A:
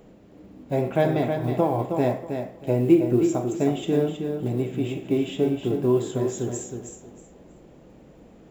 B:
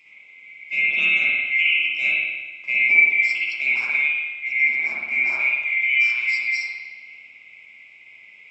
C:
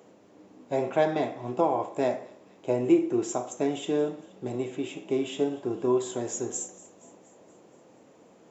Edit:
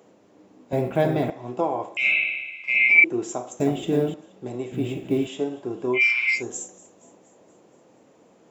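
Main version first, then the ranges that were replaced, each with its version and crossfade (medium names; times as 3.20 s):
C
0.73–1.30 s: from A
1.97–3.04 s: from B
3.60–4.14 s: from A
4.72–5.27 s: from A
5.98–6.38 s: from B, crossfade 0.10 s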